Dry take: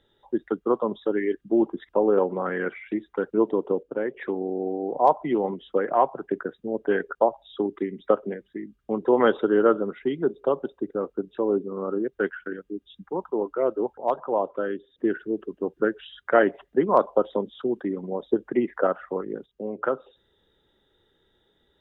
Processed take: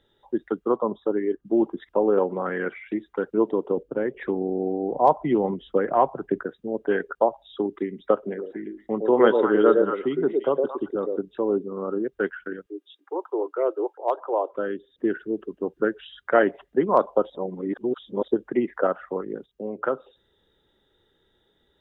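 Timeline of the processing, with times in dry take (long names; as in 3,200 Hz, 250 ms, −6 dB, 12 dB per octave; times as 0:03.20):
0:00.76–0:01.45: high shelf with overshoot 1,500 Hz −8.5 dB, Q 1.5
0:03.77–0:06.45: low-shelf EQ 170 Hz +11.5 dB
0:08.16–0:11.19: echo through a band-pass that steps 112 ms, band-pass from 430 Hz, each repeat 1.4 octaves, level −0.5 dB
0:12.66–0:14.54: Butterworth high-pass 310 Hz 72 dB per octave
0:17.30–0:18.28: reverse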